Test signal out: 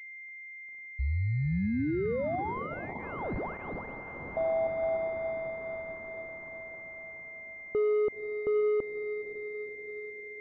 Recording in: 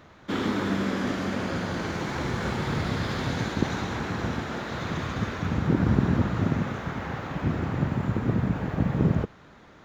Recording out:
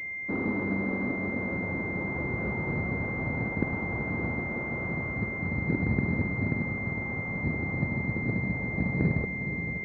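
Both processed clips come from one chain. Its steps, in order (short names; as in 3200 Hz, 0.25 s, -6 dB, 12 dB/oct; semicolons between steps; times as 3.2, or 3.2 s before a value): diffused feedback echo 0.51 s, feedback 63%, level -9.5 dB; vocal rider within 4 dB 2 s; pulse-width modulation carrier 2100 Hz; gain -4.5 dB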